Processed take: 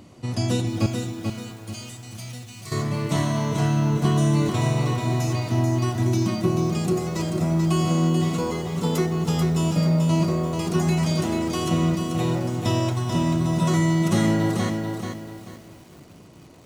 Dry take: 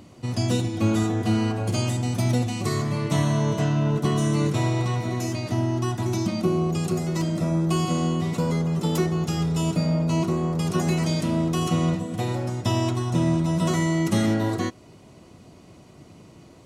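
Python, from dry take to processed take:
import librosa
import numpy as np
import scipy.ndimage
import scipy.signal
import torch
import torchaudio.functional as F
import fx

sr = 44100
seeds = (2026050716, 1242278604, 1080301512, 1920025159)

y = fx.tone_stack(x, sr, knobs='5-5-5', at=(0.86, 2.72))
y = fx.echo_crushed(y, sr, ms=437, feedback_pct=35, bits=8, wet_db=-5.0)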